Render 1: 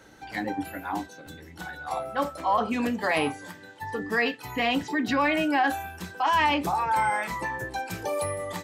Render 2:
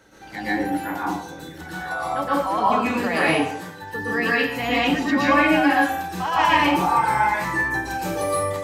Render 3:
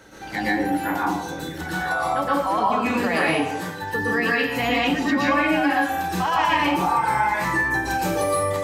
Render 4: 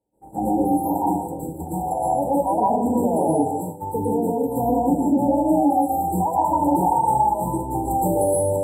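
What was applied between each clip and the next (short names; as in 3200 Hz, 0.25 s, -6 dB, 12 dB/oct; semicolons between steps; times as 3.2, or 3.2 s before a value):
plate-style reverb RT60 0.64 s, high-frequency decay 0.8×, pre-delay 0.105 s, DRR -7.5 dB; gain -2 dB
compressor 2.5:1, threshold -27 dBFS, peak gain reduction 9.5 dB; gain +6 dB
brick-wall FIR band-stop 980–7300 Hz; expander -29 dBFS; gain +3.5 dB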